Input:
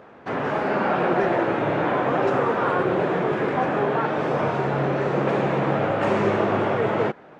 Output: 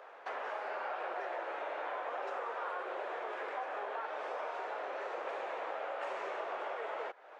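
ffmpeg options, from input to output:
ffmpeg -i in.wav -af "highpass=frequency=530:width=0.5412,highpass=frequency=530:width=1.3066,acompressor=threshold=-37dB:ratio=3,volume=-3.5dB" out.wav

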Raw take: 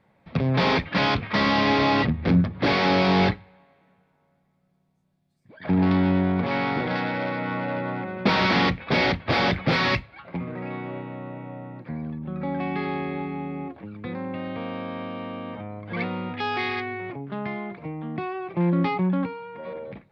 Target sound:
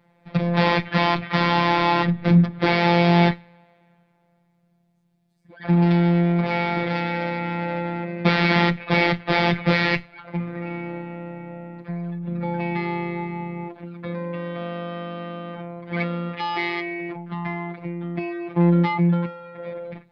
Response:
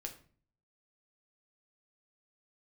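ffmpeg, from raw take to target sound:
-filter_complex "[0:a]afftfilt=real='hypot(re,im)*cos(PI*b)':imag='0':win_size=1024:overlap=0.75,acrossover=split=4500[link_01][link_02];[link_02]acompressor=threshold=-46dB:ratio=4:attack=1:release=60[link_03];[link_01][link_03]amix=inputs=2:normalize=0,volume=5.5dB"

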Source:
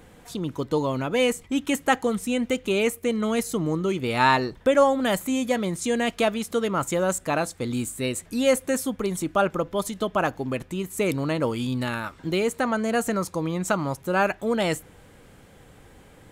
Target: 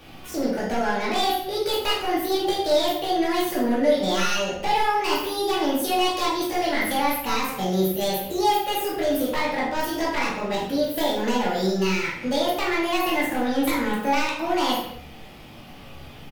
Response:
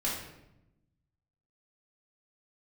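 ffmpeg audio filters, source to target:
-filter_complex "[0:a]equalizer=frequency=1900:width=1.5:gain=6.5,acrossover=split=390|1800[link_01][link_02][link_03];[link_02]alimiter=limit=-14dB:level=0:latency=1:release=211[link_04];[link_01][link_04][link_03]amix=inputs=3:normalize=0,acompressor=threshold=-25dB:ratio=2.5,asplit=2[link_05][link_06];[link_06]asoftclip=type=hard:threshold=-31.5dB,volume=-12dB[link_07];[link_05][link_07]amix=inputs=2:normalize=0,asetrate=68011,aresample=44100,atempo=0.64842,aeval=exprs='0.106*(abs(mod(val(0)/0.106+3,4)-2)-1)':channel_layout=same,asplit=2[link_08][link_09];[link_09]adelay=42,volume=-11.5dB[link_10];[link_08][link_10]amix=inputs=2:normalize=0[link_11];[1:a]atrim=start_sample=2205,afade=type=out:start_time=0.34:duration=0.01,atrim=end_sample=15435[link_12];[link_11][link_12]afir=irnorm=-1:irlink=0,volume=-2.5dB"

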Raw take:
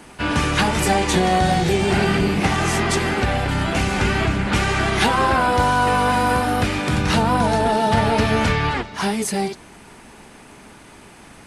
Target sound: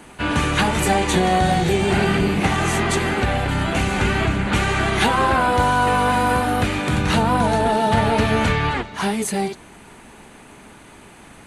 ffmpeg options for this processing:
ffmpeg -i in.wav -af "equalizer=frequency=5200:width=5.2:gain=-8.5" out.wav

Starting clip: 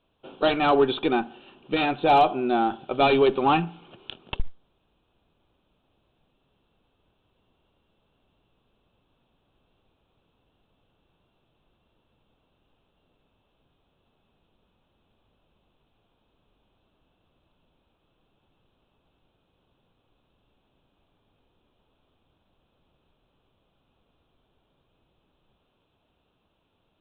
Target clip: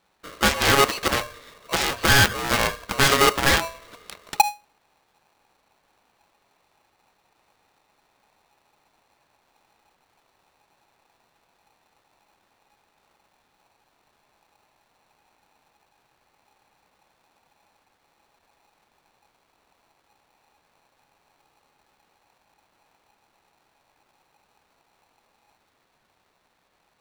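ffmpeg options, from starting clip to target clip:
ffmpeg -i in.wav -af "aeval=exprs='0.316*(cos(1*acos(clip(val(0)/0.316,-1,1)))-cos(1*PI/2))+0.0398*(cos(4*acos(clip(val(0)/0.316,-1,1)))-cos(4*PI/2))+0.112*(cos(7*acos(clip(val(0)/0.316,-1,1)))-cos(7*PI/2))':channel_layout=same,aeval=exprs='val(0)*sgn(sin(2*PI*830*n/s))':channel_layout=same" out.wav

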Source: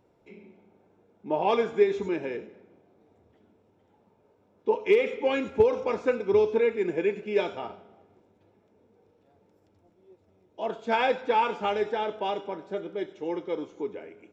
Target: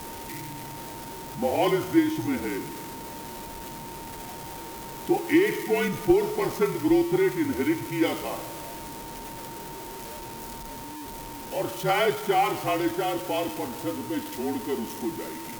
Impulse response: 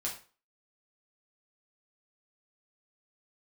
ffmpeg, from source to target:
-af "aeval=exprs='val(0)+0.5*0.0158*sgn(val(0))':channel_layout=same,afreqshift=-55,aemphasis=mode=production:type=50kf,aeval=exprs='val(0)+0.00891*sin(2*PI*1000*n/s)':channel_layout=same,asetrate=40517,aresample=44100"

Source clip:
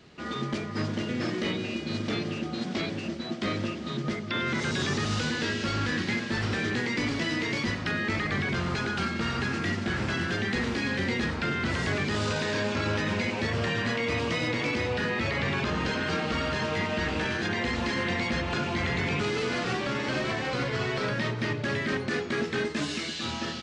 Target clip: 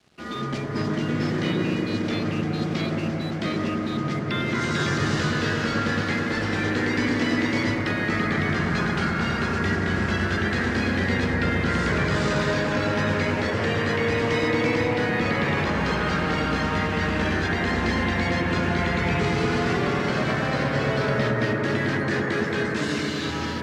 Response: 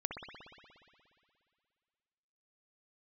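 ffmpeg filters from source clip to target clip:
-filter_complex "[0:a]aeval=exprs='sgn(val(0))*max(abs(val(0))-0.00224,0)':channel_layout=same[link_01];[1:a]atrim=start_sample=2205,asetrate=23814,aresample=44100[link_02];[link_01][link_02]afir=irnorm=-1:irlink=0"

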